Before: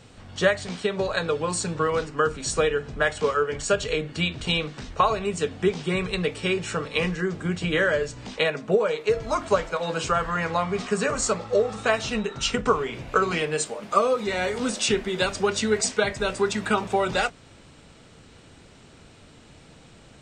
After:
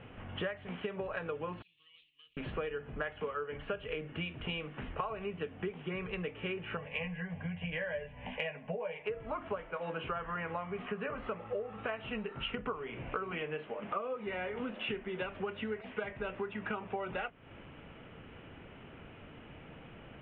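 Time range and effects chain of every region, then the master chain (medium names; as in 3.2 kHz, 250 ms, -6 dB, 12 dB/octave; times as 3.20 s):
1.62–2.37 s: CVSD coder 64 kbps + inverse Chebyshev high-pass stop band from 1.6 kHz, stop band 50 dB
6.77–9.06 s: static phaser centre 1.3 kHz, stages 6 + doubling 12 ms -5.5 dB
whole clip: steep low-pass 3.1 kHz 72 dB/octave; compression 5:1, threshold -36 dBFS; bass shelf 150 Hz -3 dB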